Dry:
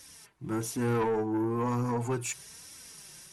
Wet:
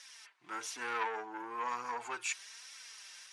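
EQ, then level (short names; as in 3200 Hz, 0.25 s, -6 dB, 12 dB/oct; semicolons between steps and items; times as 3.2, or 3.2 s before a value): HPF 1400 Hz 12 dB/oct; air absorption 80 m; high shelf 7800 Hz -7 dB; +5.5 dB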